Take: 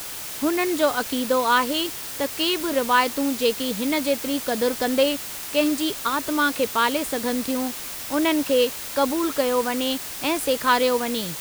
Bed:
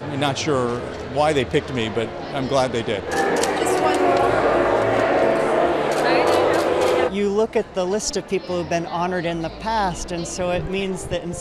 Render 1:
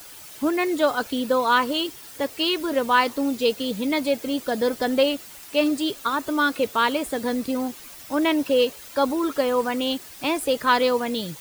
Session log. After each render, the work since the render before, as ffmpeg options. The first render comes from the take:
-af "afftdn=nr=11:nf=-34"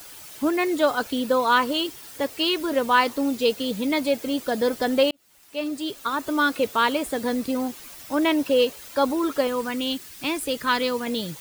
-filter_complex "[0:a]asettb=1/sr,asplit=3[a][b][c];[a]atrim=end=9.474[d];[b]atrim=start=9.47:end=11.07,asetpts=PTS-STARTPTS,afade=t=in:d=0.004:c=qsin,afade=t=out:st=1.596:d=0.004:c=qsin,equalizer=f=690:t=o:w=1.3:g=-8[e];[c]atrim=start=11.066[f];[d][e]acrossfade=d=0.004:c1=hsin:c2=qsin[g];[g][f]acrossfade=d=0.004:c1=qsin:c2=hsin,asplit=2[h][i];[h]atrim=end=5.11,asetpts=PTS-STARTPTS,afade=t=out:st=5.106:d=0.004:c=hsin[j];[i]atrim=start=5.11,asetpts=PTS-STARTPTS,afade=t=in:d=1.25[k];[j][k]concat=n=2:v=0:a=1"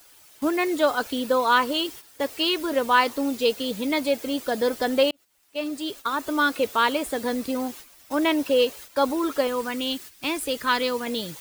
-af "agate=range=-10dB:threshold=-39dB:ratio=16:detection=peak,equalizer=f=150:t=o:w=1.4:g=-5"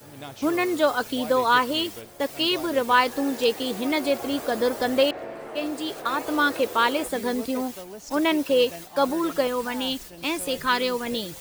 -filter_complex "[1:a]volume=-18.5dB[a];[0:a][a]amix=inputs=2:normalize=0"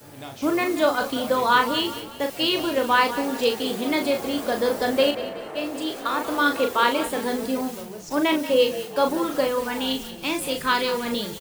-filter_complex "[0:a]asplit=2[a][b];[b]adelay=38,volume=-6dB[c];[a][c]amix=inputs=2:normalize=0,asplit=5[d][e][f][g][h];[e]adelay=184,afreqshift=-34,volume=-13.5dB[i];[f]adelay=368,afreqshift=-68,volume=-20.6dB[j];[g]adelay=552,afreqshift=-102,volume=-27.8dB[k];[h]adelay=736,afreqshift=-136,volume=-34.9dB[l];[d][i][j][k][l]amix=inputs=5:normalize=0"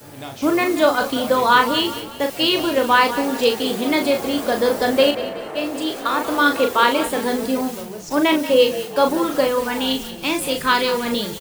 -af "volume=4.5dB,alimiter=limit=-2dB:level=0:latency=1"

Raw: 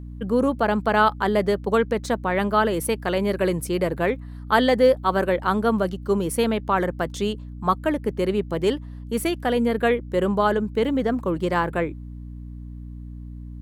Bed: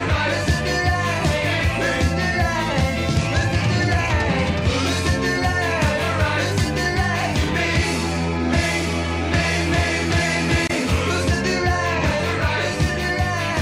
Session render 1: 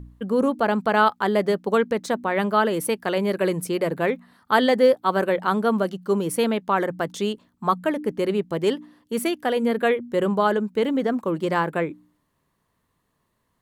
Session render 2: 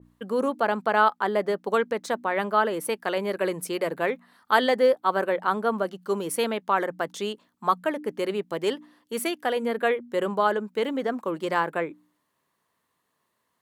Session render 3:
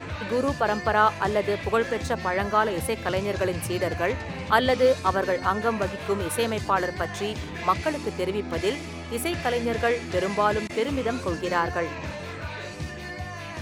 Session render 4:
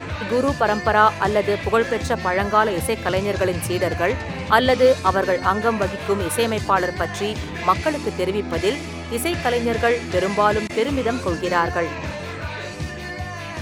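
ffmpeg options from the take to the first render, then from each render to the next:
-af "bandreject=f=60:t=h:w=4,bandreject=f=120:t=h:w=4,bandreject=f=180:t=h:w=4,bandreject=f=240:t=h:w=4,bandreject=f=300:t=h:w=4"
-af "highpass=f=520:p=1,adynamicequalizer=threshold=0.0126:dfrequency=2100:dqfactor=0.7:tfrequency=2100:tqfactor=0.7:attack=5:release=100:ratio=0.375:range=4:mode=cutabove:tftype=highshelf"
-filter_complex "[1:a]volume=-14dB[a];[0:a][a]amix=inputs=2:normalize=0"
-af "volume=5dB,alimiter=limit=-2dB:level=0:latency=1"

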